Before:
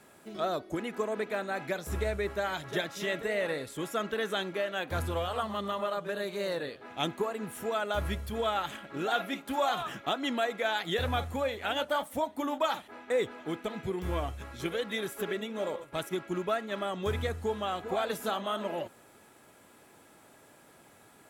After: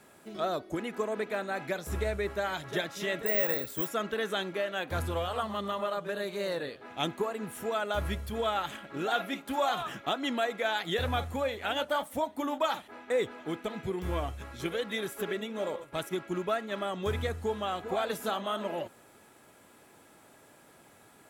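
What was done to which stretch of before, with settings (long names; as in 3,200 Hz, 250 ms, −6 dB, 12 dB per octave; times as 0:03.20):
0:03.26–0:03.89: bad sample-rate conversion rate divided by 2×, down filtered, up zero stuff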